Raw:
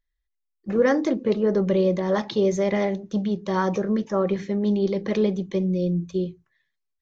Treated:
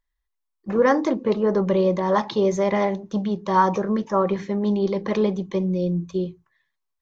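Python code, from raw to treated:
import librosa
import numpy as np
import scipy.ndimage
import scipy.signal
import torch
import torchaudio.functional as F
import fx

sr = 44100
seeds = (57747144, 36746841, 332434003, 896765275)

y = fx.peak_eq(x, sr, hz=990.0, db=10.5, octaves=0.7)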